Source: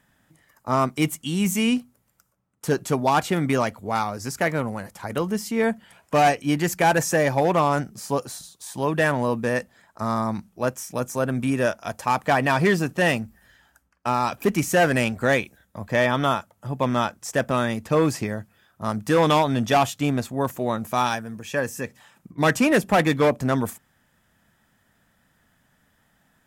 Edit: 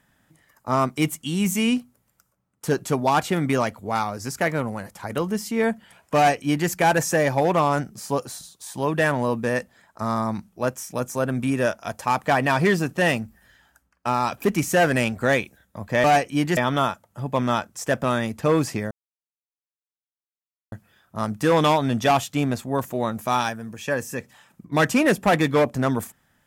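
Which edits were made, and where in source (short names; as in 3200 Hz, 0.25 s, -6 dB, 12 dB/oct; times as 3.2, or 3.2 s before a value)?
6.16–6.69 copy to 16.04
18.38 insert silence 1.81 s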